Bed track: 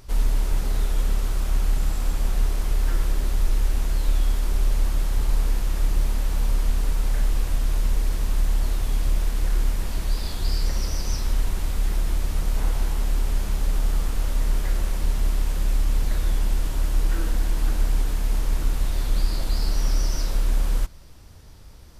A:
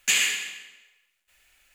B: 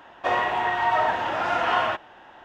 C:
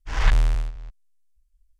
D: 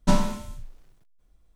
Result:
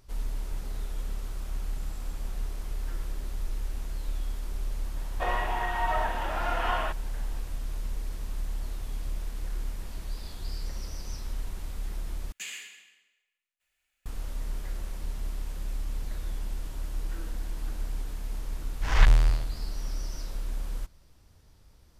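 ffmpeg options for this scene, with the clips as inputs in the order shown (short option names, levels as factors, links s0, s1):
-filter_complex "[0:a]volume=0.266,asplit=2[s0][s1];[s0]atrim=end=12.324[s2];[1:a]atrim=end=1.74,asetpts=PTS-STARTPTS,volume=0.133[s3];[s1]atrim=start=14.056[s4];[2:a]atrim=end=2.44,asetpts=PTS-STARTPTS,volume=0.447,afade=t=in:d=0.004:c=hsin,afade=t=out:st=2.436:d=0.004:c=hsin,adelay=4960[s5];[3:a]atrim=end=1.79,asetpts=PTS-STARTPTS,volume=0.944,afade=t=in:d=0.004:c=hsin,afade=t=out:st=1.786:d=0.004:c=hsin,adelay=18750[s6];[s2][s3]acrossfade=d=0.004:c1=hsin:c2=hsin[s7];[s7][s4]acrossfade=d=0.004:c1=hsin:c2=hsin[s8];[s8][s5][s6]amix=inputs=3:normalize=0"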